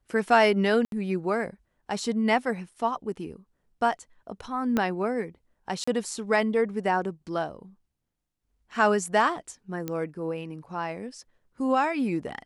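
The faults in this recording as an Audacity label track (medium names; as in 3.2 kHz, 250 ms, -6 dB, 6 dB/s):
0.850000	0.920000	dropout 72 ms
4.770000	4.770000	pop -12 dBFS
5.840000	5.880000	dropout 35 ms
9.880000	9.880000	pop -17 dBFS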